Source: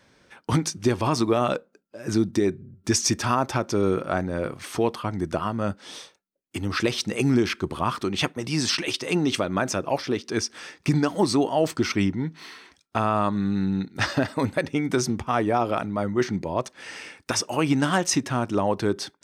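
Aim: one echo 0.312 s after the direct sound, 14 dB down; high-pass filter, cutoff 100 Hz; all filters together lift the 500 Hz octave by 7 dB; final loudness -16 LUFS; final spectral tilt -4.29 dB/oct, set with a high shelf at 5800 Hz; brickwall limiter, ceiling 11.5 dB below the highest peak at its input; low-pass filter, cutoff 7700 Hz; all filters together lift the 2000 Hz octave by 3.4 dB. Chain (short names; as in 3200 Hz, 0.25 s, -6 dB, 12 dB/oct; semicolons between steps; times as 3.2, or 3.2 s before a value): HPF 100 Hz; LPF 7700 Hz; bell 500 Hz +9 dB; bell 2000 Hz +3 dB; high shelf 5800 Hz +7 dB; limiter -14 dBFS; echo 0.312 s -14 dB; gain +9.5 dB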